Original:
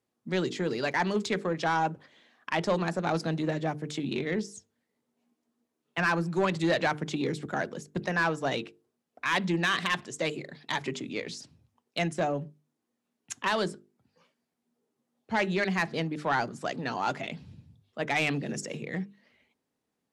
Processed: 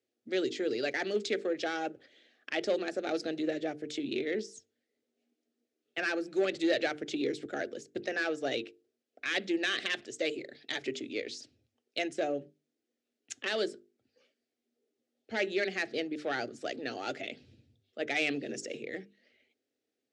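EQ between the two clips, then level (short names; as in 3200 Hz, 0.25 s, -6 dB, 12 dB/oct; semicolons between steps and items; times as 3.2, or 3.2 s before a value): BPF 130–6300 Hz; fixed phaser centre 410 Hz, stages 4; 0.0 dB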